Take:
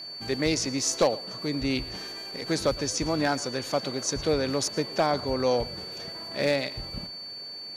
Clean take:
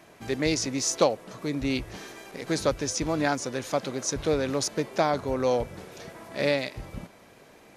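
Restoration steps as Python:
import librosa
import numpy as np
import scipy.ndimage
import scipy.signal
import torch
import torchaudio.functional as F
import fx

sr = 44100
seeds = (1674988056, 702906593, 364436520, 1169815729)

y = fx.fix_declip(x, sr, threshold_db=-14.0)
y = fx.notch(y, sr, hz=4500.0, q=30.0)
y = fx.fix_echo_inverse(y, sr, delay_ms=113, level_db=-20.0)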